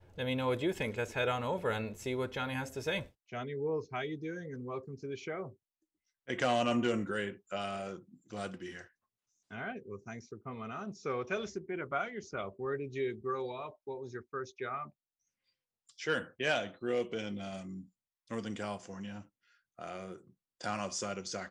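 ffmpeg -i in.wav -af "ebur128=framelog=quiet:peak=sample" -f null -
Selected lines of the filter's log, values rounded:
Integrated loudness:
  I:         -37.3 LUFS
  Threshold: -47.7 LUFS
Loudness range:
  LRA:         7.1 LU
  Threshold: -58.3 LUFS
  LRA low:   -42.8 LUFS
  LRA high:  -35.8 LUFS
Sample peak:
  Peak:      -18.5 dBFS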